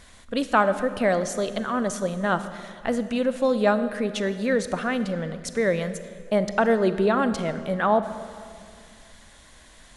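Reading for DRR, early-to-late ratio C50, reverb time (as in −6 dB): 11.0 dB, 11.5 dB, 2.1 s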